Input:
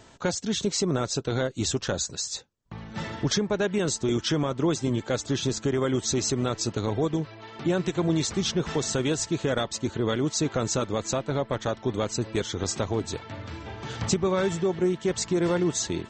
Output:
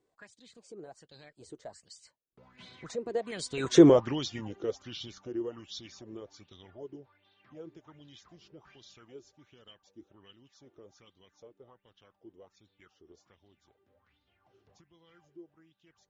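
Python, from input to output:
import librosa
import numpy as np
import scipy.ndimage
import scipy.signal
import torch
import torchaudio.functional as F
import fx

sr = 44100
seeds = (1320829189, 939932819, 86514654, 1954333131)

y = fx.doppler_pass(x, sr, speed_mps=43, closest_m=4.3, pass_at_s=3.85)
y = fx.bell_lfo(y, sr, hz=1.3, low_hz=350.0, high_hz=3900.0, db=18)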